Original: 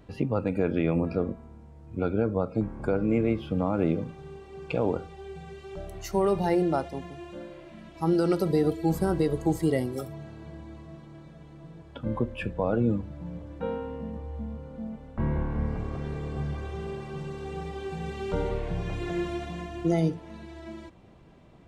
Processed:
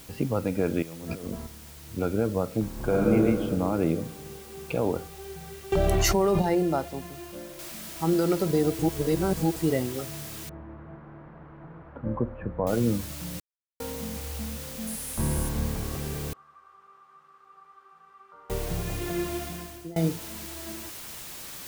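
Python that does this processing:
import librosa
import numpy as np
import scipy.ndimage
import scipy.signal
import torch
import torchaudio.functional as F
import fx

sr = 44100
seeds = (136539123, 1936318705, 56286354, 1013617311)

y = fx.over_compress(x, sr, threshold_db=-37.0, ratio=-1.0, at=(0.82, 1.47))
y = fx.reverb_throw(y, sr, start_s=2.72, length_s=0.4, rt60_s=2.4, drr_db=-3.5)
y = fx.high_shelf(y, sr, hz=fx.line((4.16, 8500.0), (4.7, 4600.0)), db=-5.5, at=(4.16, 4.7), fade=0.02)
y = fx.env_flatten(y, sr, amount_pct=100, at=(5.72, 6.42))
y = fx.noise_floor_step(y, sr, seeds[0], at_s=7.59, before_db=-49, after_db=-41, tilt_db=0.0)
y = fx.lowpass(y, sr, hz=1400.0, slope=24, at=(10.49, 12.67))
y = fx.peak_eq(y, sr, hz=10000.0, db=13.5, octaves=0.46, at=(14.87, 15.49))
y = fx.bandpass_q(y, sr, hz=1200.0, q=13.0, at=(16.33, 18.5))
y = fx.edit(y, sr, fx.reverse_span(start_s=8.79, length_s=0.77),
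    fx.silence(start_s=13.4, length_s=0.4),
    fx.fade_out_to(start_s=19.42, length_s=0.54, floor_db=-23.5), tone=tone)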